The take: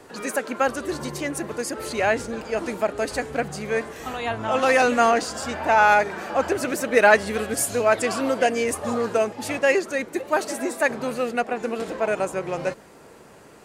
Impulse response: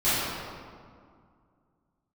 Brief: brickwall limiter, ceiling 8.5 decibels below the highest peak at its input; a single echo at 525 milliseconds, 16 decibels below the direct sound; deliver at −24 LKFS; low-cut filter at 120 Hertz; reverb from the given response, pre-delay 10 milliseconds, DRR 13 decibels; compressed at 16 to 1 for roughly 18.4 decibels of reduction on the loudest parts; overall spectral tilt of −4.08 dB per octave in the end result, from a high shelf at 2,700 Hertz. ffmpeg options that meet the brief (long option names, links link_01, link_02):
-filter_complex "[0:a]highpass=120,highshelf=frequency=2700:gain=-5.5,acompressor=threshold=-29dB:ratio=16,alimiter=level_in=3.5dB:limit=-24dB:level=0:latency=1,volume=-3.5dB,aecho=1:1:525:0.158,asplit=2[link_01][link_02];[1:a]atrim=start_sample=2205,adelay=10[link_03];[link_02][link_03]afir=irnorm=-1:irlink=0,volume=-29dB[link_04];[link_01][link_04]amix=inputs=2:normalize=0,volume=12.5dB"